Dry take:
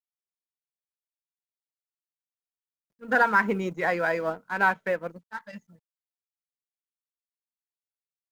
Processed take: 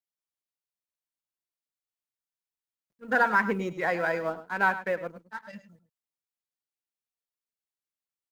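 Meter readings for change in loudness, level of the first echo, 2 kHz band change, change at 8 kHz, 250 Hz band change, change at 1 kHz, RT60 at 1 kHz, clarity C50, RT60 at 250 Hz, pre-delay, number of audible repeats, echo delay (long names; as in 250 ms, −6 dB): −2.0 dB, −13.5 dB, −2.0 dB, can't be measured, −1.5 dB, −2.0 dB, no reverb audible, no reverb audible, no reverb audible, no reverb audible, 1, 103 ms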